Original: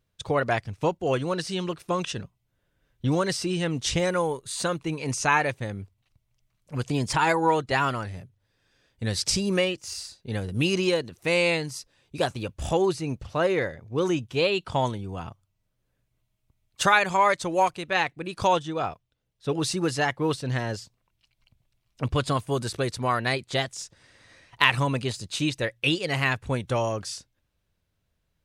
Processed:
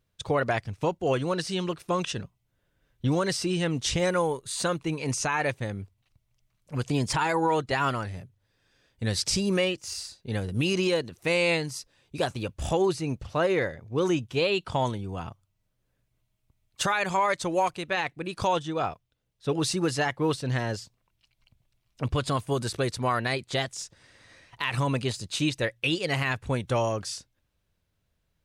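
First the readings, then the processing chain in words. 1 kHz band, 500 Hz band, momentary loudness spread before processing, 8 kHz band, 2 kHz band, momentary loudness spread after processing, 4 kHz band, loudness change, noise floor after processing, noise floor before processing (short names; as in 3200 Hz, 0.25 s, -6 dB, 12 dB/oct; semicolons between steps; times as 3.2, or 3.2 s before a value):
-3.0 dB, -1.0 dB, 12 LU, -0.5 dB, -3.5 dB, 10 LU, -1.5 dB, -2.0 dB, -76 dBFS, -76 dBFS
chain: limiter -15.5 dBFS, peak gain reduction 11 dB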